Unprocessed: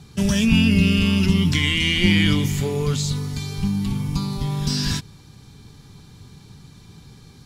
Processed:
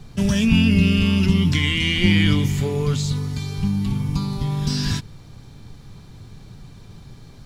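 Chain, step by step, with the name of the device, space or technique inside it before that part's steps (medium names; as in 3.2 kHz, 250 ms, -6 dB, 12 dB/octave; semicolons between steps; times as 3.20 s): car interior (peaking EQ 110 Hz +4 dB 0.53 oct; treble shelf 4.8 kHz -5 dB; brown noise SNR 24 dB)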